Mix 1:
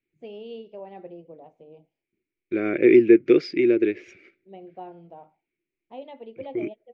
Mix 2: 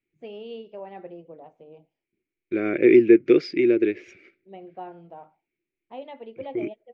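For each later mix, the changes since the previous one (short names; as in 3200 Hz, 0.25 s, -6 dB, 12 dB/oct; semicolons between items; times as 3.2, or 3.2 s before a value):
first voice: add bell 1500 Hz +7 dB 1.3 oct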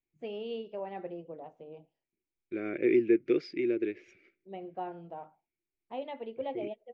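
second voice -10.5 dB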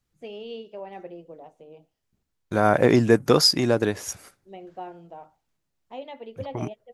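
second voice: remove double band-pass 900 Hz, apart 2.7 oct; master: remove air absorption 200 m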